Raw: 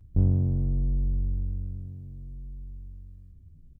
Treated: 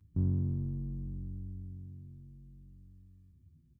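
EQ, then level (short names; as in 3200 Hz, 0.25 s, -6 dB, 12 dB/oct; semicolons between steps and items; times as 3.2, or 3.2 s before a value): HPF 93 Hz 12 dB/oct; band shelf 590 Hz -10.5 dB 1.1 oct; -5.0 dB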